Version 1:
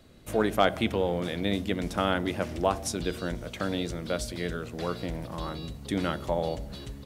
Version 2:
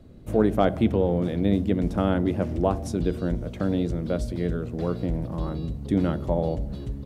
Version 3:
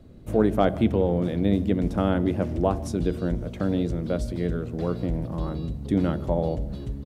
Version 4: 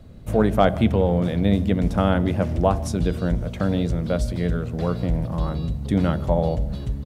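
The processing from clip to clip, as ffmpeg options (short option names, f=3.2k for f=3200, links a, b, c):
-af "tiltshelf=f=780:g=9"
-af "aecho=1:1:154:0.0708"
-af "equalizer=f=330:t=o:w=0.93:g=-8.5,volume=6dB"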